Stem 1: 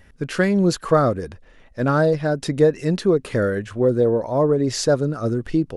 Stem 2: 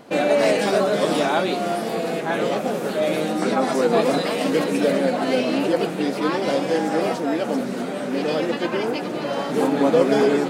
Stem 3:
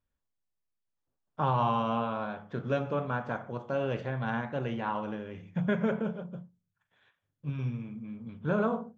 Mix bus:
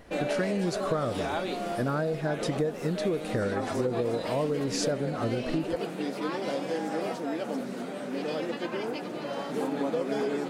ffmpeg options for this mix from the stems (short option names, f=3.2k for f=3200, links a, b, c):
-filter_complex "[0:a]volume=-4.5dB[a];[1:a]volume=-9dB[b];[a][b]amix=inputs=2:normalize=0,acompressor=threshold=-25dB:ratio=6"